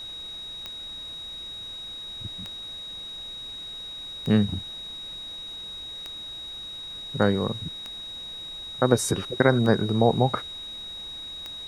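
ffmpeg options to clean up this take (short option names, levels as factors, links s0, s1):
-af "adeclick=t=4,bandreject=f=3800:w=30,afftdn=nr=30:nf=-38"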